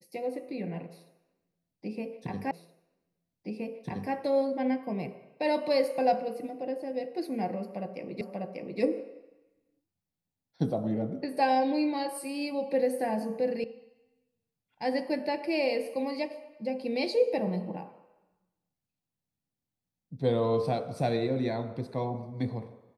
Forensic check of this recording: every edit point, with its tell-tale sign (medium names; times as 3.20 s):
2.51 s: repeat of the last 1.62 s
8.21 s: repeat of the last 0.59 s
13.64 s: sound stops dead